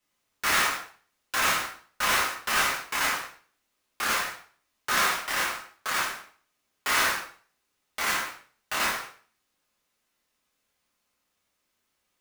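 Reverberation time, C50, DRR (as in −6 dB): 0.45 s, 5.5 dB, −5.5 dB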